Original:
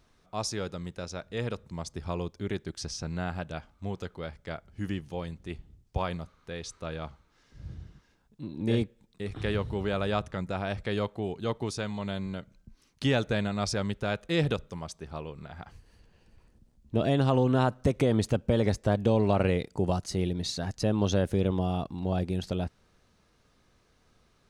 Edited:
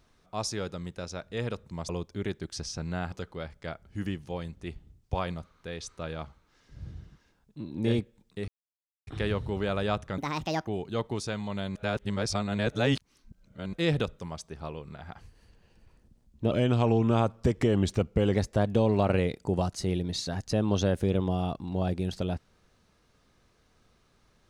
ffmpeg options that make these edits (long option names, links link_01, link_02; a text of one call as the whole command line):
ffmpeg -i in.wav -filter_complex "[0:a]asplit=10[link_01][link_02][link_03][link_04][link_05][link_06][link_07][link_08][link_09][link_10];[link_01]atrim=end=1.892[link_11];[link_02]atrim=start=2.138:end=3.372[link_12];[link_03]atrim=start=3.948:end=9.31,asetpts=PTS-STARTPTS,afade=type=out:start_time=5.358:duration=0.004:curve=hsin,apad=pad_dur=0.59[link_13];[link_04]atrim=start=9.31:end=10.424,asetpts=PTS-STARTPTS,afade=type=in:duration=0.004:curve=hsin[link_14];[link_05]atrim=start=10.42:end=11.18,asetpts=PTS-STARTPTS,asetrate=67914,aresample=44100[link_15];[link_06]atrim=start=11.176:end=12.262[link_16];[link_07]atrim=start=12.258:end=14.242,asetpts=PTS-STARTPTS,areverse[link_17];[link_08]atrim=start=14.238:end=17.024[link_18];[link_09]atrim=start=17.02:end=18.65,asetpts=PTS-STARTPTS,asetrate=39249,aresample=44100,atrim=end_sample=80767,asetpts=PTS-STARTPTS[link_19];[link_10]atrim=start=18.646[link_20];[link_11][link_12]acrossfade=duration=0.004:curve1=hsin:curve2=hsin[link_21];[link_13][link_14]concat=n=2:v=0:a=1[link_22];[link_21][link_22]acrossfade=duration=0.004:curve1=hsin:curve2=hsin[link_23];[link_23][link_15]acrossfade=duration=0.004:curve1=hsin:curve2=hsin[link_24];[link_24][link_16]acrossfade=duration=0.004:curve1=hsin:curve2=hsin[link_25];[link_25][link_17]acrossfade=duration=0.004:curve1=hsin:curve2=hsin[link_26];[link_26][link_18]acrossfade=duration=0.004:curve1=hsin:curve2=hsin[link_27];[link_27][link_19]acrossfade=duration=0.004:curve1=hsin:curve2=hsin[link_28];[link_28][link_20]acrossfade=duration=0.004:curve1=hsin:curve2=hsin" out.wav